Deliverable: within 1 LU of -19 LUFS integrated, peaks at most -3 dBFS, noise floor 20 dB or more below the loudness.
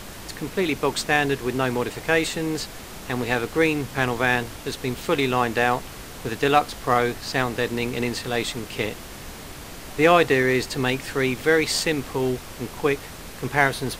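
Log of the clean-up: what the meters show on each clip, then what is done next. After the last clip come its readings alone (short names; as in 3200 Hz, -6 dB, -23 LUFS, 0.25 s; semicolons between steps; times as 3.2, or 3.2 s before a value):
noise floor -39 dBFS; noise floor target -43 dBFS; loudness -23.0 LUFS; peak -3.0 dBFS; loudness target -19.0 LUFS
-> noise print and reduce 6 dB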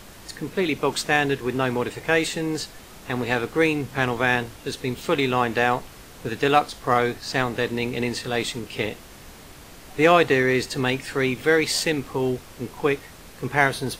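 noise floor -45 dBFS; loudness -23.0 LUFS; peak -3.0 dBFS; loudness target -19.0 LUFS
-> gain +4 dB; limiter -3 dBFS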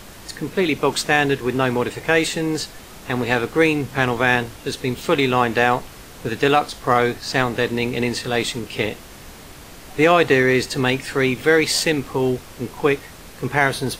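loudness -19.5 LUFS; peak -3.0 dBFS; noise floor -41 dBFS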